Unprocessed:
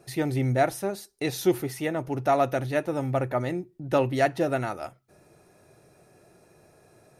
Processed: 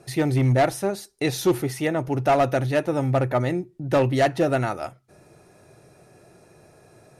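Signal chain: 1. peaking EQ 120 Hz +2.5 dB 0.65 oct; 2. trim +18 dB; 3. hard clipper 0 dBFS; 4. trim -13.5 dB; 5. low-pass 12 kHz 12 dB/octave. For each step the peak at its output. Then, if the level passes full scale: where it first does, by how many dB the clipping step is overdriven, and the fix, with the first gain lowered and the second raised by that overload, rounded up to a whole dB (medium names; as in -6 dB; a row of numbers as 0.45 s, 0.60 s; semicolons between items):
-10.0 dBFS, +8.0 dBFS, 0.0 dBFS, -13.5 dBFS, -13.0 dBFS; step 2, 8.0 dB; step 2 +10 dB, step 4 -5.5 dB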